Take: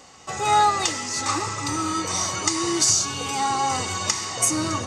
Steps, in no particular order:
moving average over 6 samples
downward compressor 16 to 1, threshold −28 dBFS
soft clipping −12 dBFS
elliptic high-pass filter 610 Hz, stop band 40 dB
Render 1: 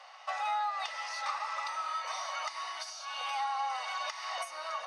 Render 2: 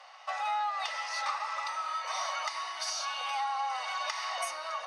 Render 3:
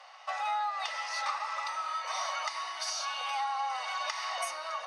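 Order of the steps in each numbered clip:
downward compressor, then elliptic high-pass filter, then soft clipping, then moving average
moving average, then soft clipping, then downward compressor, then elliptic high-pass filter
moving average, then downward compressor, then soft clipping, then elliptic high-pass filter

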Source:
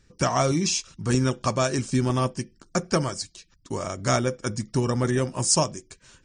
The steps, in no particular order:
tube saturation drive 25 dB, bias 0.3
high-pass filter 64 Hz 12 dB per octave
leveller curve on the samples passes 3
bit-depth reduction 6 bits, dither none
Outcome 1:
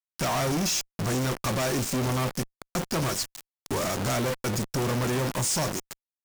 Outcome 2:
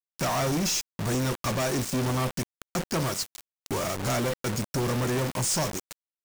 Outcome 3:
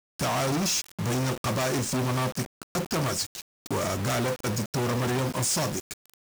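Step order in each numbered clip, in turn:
bit-depth reduction, then high-pass filter, then leveller curve on the samples, then tube saturation
high-pass filter, then tube saturation, then bit-depth reduction, then leveller curve on the samples
leveller curve on the samples, then tube saturation, then high-pass filter, then bit-depth reduction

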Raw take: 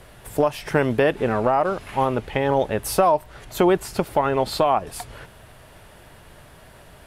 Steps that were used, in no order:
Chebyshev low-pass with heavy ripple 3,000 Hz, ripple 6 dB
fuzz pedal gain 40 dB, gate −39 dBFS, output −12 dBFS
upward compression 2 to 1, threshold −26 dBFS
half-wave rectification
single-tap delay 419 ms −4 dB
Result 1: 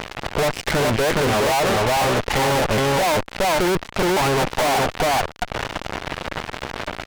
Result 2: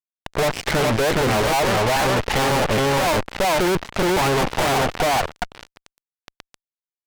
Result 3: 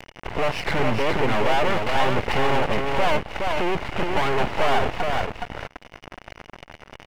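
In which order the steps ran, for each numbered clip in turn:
single-tap delay, then upward compression, then Chebyshev low-pass with heavy ripple, then half-wave rectification, then fuzz pedal
Chebyshev low-pass with heavy ripple, then half-wave rectification, then single-tap delay, then fuzz pedal, then upward compression
fuzz pedal, then Chebyshev low-pass with heavy ripple, then half-wave rectification, then upward compression, then single-tap delay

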